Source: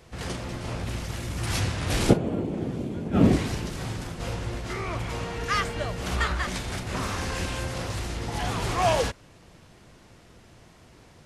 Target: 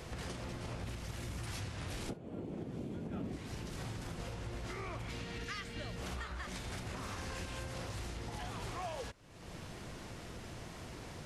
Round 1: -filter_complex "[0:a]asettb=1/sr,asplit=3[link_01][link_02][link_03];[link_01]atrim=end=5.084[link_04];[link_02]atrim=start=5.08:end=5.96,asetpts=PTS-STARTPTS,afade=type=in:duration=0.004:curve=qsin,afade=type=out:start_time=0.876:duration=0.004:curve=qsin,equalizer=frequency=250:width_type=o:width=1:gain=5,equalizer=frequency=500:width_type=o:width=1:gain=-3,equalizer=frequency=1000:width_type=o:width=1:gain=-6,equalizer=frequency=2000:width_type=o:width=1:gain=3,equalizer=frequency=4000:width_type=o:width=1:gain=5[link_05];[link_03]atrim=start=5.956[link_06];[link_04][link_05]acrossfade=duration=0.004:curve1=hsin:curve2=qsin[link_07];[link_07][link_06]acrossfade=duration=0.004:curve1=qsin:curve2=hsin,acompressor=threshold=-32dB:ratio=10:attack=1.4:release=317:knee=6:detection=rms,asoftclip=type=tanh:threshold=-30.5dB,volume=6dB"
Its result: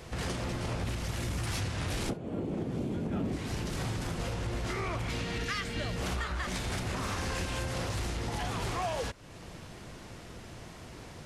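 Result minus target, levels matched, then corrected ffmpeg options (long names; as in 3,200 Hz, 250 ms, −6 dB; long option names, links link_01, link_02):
downward compressor: peak gain reduction −9.5 dB
-filter_complex "[0:a]asettb=1/sr,asplit=3[link_01][link_02][link_03];[link_01]atrim=end=5.084[link_04];[link_02]atrim=start=5.08:end=5.96,asetpts=PTS-STARTPTS,afade=type=in:duration=0.004:curve=qsin,afade=type=out:start_time=0.876:duration=0.004:curve=qsin,equalizer=frequency=250:width_type=o:width=1:gain=5,equalizer=frequency=500:width_type=o:width=1:gain=-3,equalizer=frequency=1000:width_type=o:width=1:gain=-6,equalizer=frequency=2000:width_type=o:width=1:gain=3,equalizer=frequency=4000:width_type=o:width=1:gain=5[link_05];[link_03]atrim=start=5.956[link_06];[link_04][link_05]acrossfade=duration=0.004:curve1=hsin:curve2=qsin[link_07];[link_07][link_06]acrossfade=duration=0.004:curve1=qsin:curve2=hsin,acompressor=threshold=-42.5dB:ratio=10:attack=1.4:release=317:knee=6:detection=rms,asoftclip=type=tanh:threshold=-30.5dB,volume=6dB"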